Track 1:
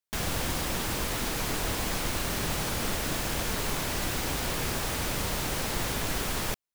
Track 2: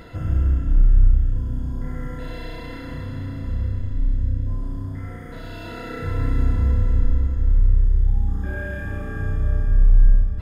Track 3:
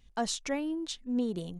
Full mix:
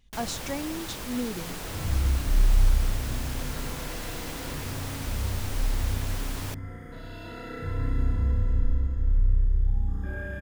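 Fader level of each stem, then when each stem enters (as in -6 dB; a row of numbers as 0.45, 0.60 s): -6.5, -6.0, -1.0 dB; 0.00, 1.60, 0.00 s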